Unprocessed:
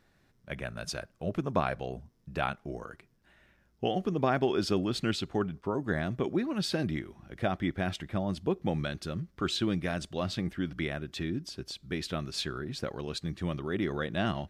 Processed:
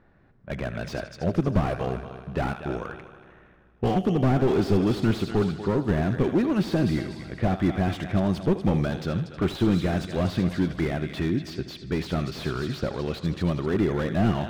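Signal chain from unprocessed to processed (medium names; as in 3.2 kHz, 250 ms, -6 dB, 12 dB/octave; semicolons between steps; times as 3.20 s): level-controlled noise filter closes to 1.5 kHz, open at -29 dBFS; multi-head delay 79 ms, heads first and third, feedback 55%, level -17 dB; slew-rate limiter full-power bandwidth 17 Hz; trim +8.5 dB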